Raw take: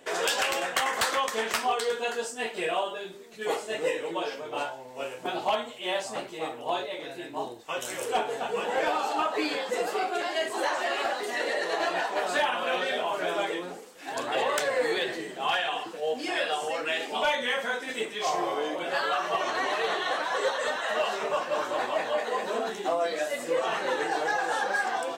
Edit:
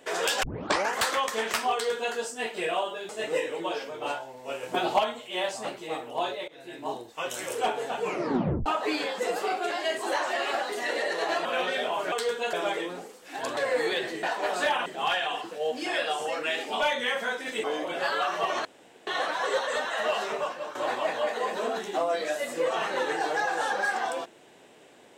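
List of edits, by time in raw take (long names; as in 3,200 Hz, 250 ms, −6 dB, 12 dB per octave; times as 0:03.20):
0:00.43: tape start 0.53 s
0:01.73–0:02.14: duplicate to 0:13.26
0:03.09–0:03.60: remove
0:05.14–0:05.50: clip gain +4.5 dB
0:06.99–0:07.32: fade in, from −21 dB
0:08.54: tape stop 0.63 s
0:11.96–0:12.59: move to 0:15.28
0:14.30–0:14.62: remove
0:18.06–0:18.55: remove
0:19.56–0:19.98: fill with room tone
0:21.20–0:21.66: fade out, to −12.5 dB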